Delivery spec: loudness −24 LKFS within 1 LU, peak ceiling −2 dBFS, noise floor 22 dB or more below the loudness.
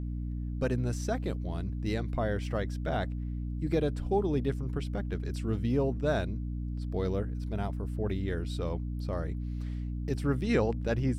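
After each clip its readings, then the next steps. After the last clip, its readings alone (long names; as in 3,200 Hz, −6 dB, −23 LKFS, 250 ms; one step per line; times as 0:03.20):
mains hum 60 Hz; hum harmonics up to 300 Hz; level of the hum −32 dBFS; integrated loudness −32.5 LKFS; sample peak −14.5 dBFS; target loudness −24.0 LKFS
→ hum removal 60 Hz, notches 5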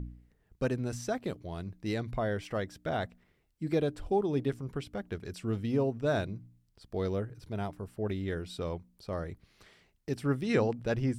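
mains hum none found; integrated loudness −34.0 LKFS; sample peak −14.5 dBFS; target loudness −24.0 LKFS
→ level +10 dB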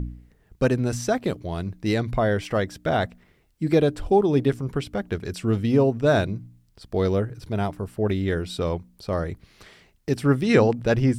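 integrated loudness −24.0 LKFS; sample peak −4.5 dBFS; background noise floor −62 dBFS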